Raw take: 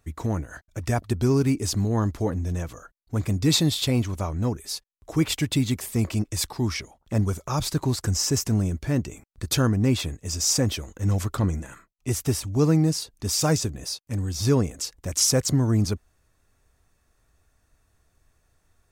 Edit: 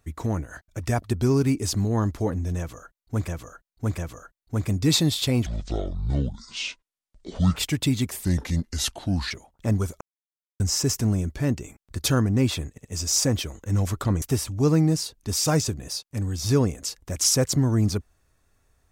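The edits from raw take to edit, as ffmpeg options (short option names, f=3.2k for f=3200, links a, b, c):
-filter_complex "[0:a]asplit=12[a][b][c][d][e][f][g][h][i][j][k][l];[a]atrim=end=3.282[m];[b]atrim=start=2.578:end=3.282[n];[c]atrim=start=2.578:end=4.064[o];[d]atrim=start=4.06:end=5.26,asetpts=PTS-STARTPTS,asetrate=25137,aresample=44100,atrim=end_sample=92842,asetpts=PTS-STARTPTS[p];[e]atrim=start=5.256:end=5.944[q];[f]atrim=start=5.94:end=6.78,asetpts=PTS-STARTPTS,asetrate=34839,aresample=44100,atrim=end_sample=46891,asetpts=PTS-STARTPTS[r];[g]atrim=start=6.776:end=7.48,asetpts=PTS-STARTPTS,afade=t=out:st=0.7:d=0.004:c=hsin[s];[h]atrim=start=7.48:end=8.07,asetpts=PTS-STARTPTS,volume=0[t];[i]atrim=start=8.07:end=10.252,asetpts=PTS-STARTPTS,afade=t=in:d=0.004:c=hsin[u];[j]atrim=start=10.178:end=10.252[v];[k]atrim=start=10.178:end=11.552[w];[l]atrim=start=12.178[x];[m][n]acrossfade=d=0.004:c1=hsin:c2=hsin[y];[y][o]acrossfade=d=0.004:c1=hsin:c2=hsin[z];[z][p]acrossfade=d=0.004:c1=hsin:c2=hsin[aa];[aa][q]acrossfade=d=0.004:c1=hsin:c2=hsin[ab];[ab][r]acrossfade=d=0.004:c1=hsin:c2=hsin[ac];[s][t][u]concat=n=3:v=0:a=1[ad];[ac][ad]acrossfade=d=0.004:c1=hsin:c2=hsin[ae];[ae][v]acrossfade=d=0.004:c1=hsin:c2=hsin[af];[af][w]acrossfade=d=0.004:c1=hsin:c2=hsin[ag];[ag][x]acrossfade=d=0.004:c1=hsin:c2=hsin"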